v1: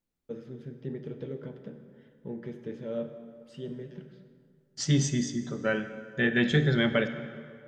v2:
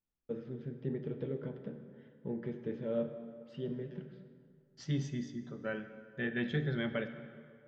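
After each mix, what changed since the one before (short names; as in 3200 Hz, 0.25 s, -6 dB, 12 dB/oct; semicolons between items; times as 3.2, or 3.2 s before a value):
second voice -9.5 dB; master: add air absorption 180 m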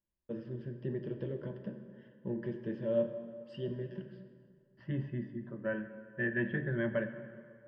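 second voice: add LPF 2200 Hz 24 dB/oct; master: add ripple EQ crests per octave 1.3, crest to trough 11 dB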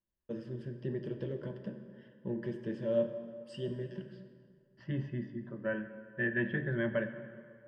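master: remove air absorption 180 m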